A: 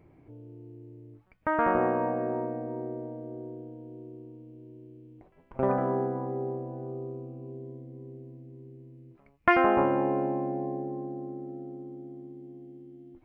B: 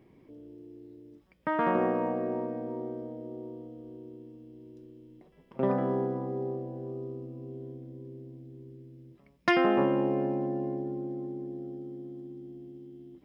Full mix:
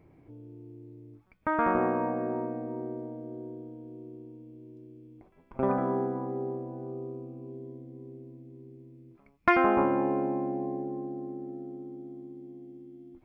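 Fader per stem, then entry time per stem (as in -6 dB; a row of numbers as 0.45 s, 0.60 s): -1.0 dB, -12.0 dB; 0.00 s, 0.00 s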